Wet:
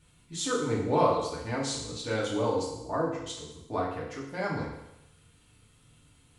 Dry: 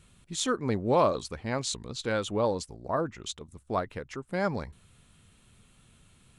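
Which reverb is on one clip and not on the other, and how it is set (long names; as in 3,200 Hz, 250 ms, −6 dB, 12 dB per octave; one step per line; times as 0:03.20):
feedback delay network reverb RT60 0.88 s, low-frequency decay 0.85×, high-frequency decay 1×, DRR −5.5 dB
level −7 dB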